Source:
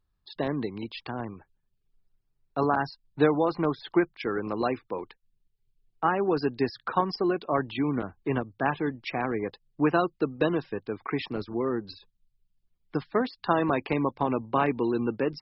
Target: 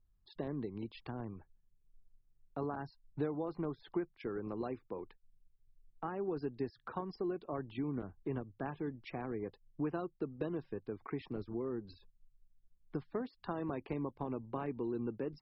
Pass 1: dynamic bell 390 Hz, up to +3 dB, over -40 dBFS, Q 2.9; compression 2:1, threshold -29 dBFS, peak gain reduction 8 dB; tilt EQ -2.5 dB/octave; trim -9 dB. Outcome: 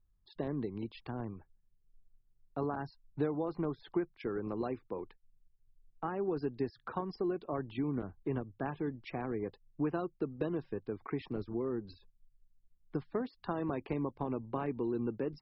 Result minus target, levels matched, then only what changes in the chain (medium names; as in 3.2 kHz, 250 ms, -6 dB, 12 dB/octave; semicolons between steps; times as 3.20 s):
compression: peak gain reduction -3 dB
change: compression 2:1, threshold -35.5 dBFS, peak gain reduction 11.5 dB